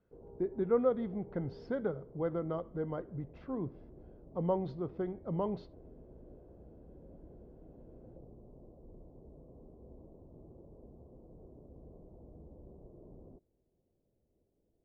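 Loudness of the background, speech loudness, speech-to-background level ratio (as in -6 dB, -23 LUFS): -55.5 LUFS, -36.5 LUFS, 19.0 dB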